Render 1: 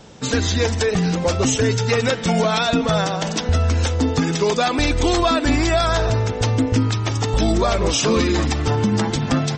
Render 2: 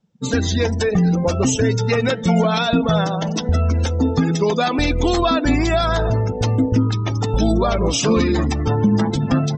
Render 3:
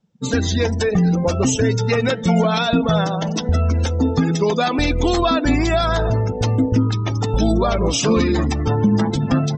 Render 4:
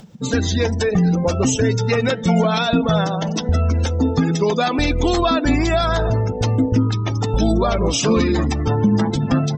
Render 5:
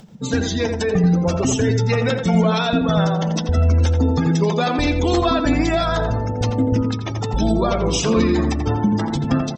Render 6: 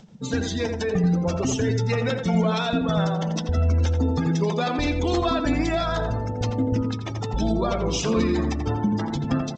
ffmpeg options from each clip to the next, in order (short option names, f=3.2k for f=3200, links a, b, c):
-af "afftdn=nr=32:nf=-27,equalizer=f=190:w=1.8:g=4.5"
-af anull
-af "acompressor=mode=upward:threshold=-25dB:ratio=2.5"
-filter_complex "[0:a]asplit=2[a][b];[b]adelay=85,lowpass=f=1.9k:p=1,volume=-4.5dB,asplit=2[c][d];[d]adelay=85,lowpass=f=1.9k:p=1,volume=0.26,asplit=2[e][f];[f]adelay=85,lowpass=f=1.9k:p=1,volume=0.26,asplit=2[g][h];[h]adelay=85,lowpass=f=1.9k:p=1,volume=0.26[i];[a][c][e][g][i]amix=inputs=5:normalize=0,volume=-2dB"
-af "volume=-5dB" -ar 16000 -c:a g722